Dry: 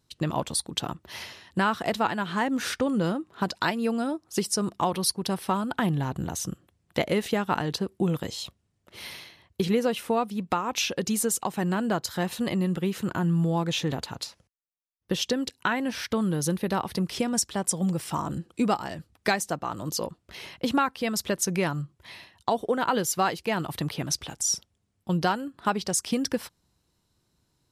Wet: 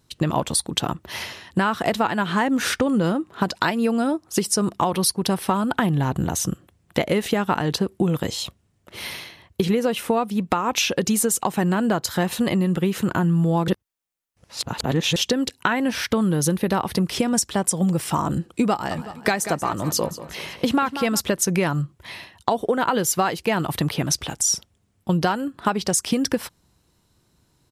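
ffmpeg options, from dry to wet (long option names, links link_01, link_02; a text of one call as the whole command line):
ffmpeg -i in.wav -filter_complex "[0:a]asplit=3[link_01][link_02][link_03];[link_01]afade=type=out:start_time=18.9:duration=0.02[link_04];[link_02]aecho=1:1:187|374|561|748|935:0.178|0.0907|0.0463|0.0236|0.012,afade=type=in:start_time=18.9:duration=0.02,afade=type=out:start_time=21.19:duration=0.02[link_05];[link_03]afade=type=in:start_time=21.19:duration=0.02[link_06];[link_04][link_05][link_06]amix=inputs=3:normalize=0,asplit=3[link_07][link_08][link_09];[link_07]atrim=end=13.682[link_10];[link_08]atrim=start=13.678:end=15.162,asetpts=PTS-STARTPTS,areverse[link_11];[link_09]atrim=start=15.158[link_12];[link_10][link_11]acrossfade=duration=0.004:curve1=hsin:curve2=hsin[link_13];[link_13][link_12]acrossfade=duration=0.004:curve1=hsin:curve2=hsin,equalizer=frequency=4600:width=1.5:gain=-2.5,acompressor=threshold=-25dB:ratio=6,volume=8.5dB" out.wav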